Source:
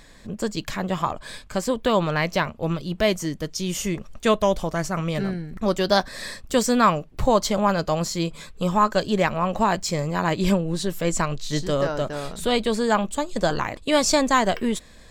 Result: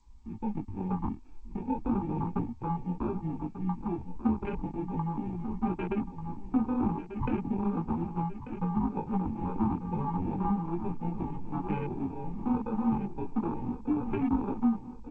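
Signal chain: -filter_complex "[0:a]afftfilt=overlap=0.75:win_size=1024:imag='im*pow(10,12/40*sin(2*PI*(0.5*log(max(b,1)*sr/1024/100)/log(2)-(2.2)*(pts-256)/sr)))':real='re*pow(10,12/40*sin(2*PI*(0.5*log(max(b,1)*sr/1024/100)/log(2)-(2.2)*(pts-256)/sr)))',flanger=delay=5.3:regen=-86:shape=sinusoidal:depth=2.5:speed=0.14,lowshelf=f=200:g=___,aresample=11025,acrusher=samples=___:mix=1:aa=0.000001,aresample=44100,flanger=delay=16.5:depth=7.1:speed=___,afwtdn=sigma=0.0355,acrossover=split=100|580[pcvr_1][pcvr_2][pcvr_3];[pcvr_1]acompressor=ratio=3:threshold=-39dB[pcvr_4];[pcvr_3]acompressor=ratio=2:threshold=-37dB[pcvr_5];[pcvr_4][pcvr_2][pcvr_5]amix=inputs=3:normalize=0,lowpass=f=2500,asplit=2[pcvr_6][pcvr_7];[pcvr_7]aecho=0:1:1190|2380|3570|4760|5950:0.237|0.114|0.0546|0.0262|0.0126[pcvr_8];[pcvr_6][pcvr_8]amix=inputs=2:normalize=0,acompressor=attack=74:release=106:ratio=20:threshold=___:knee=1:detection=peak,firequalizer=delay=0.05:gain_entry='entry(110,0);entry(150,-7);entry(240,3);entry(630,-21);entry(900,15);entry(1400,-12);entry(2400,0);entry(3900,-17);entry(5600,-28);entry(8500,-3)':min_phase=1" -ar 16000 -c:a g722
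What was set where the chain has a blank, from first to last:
8.5, 11, 0.36, -28dB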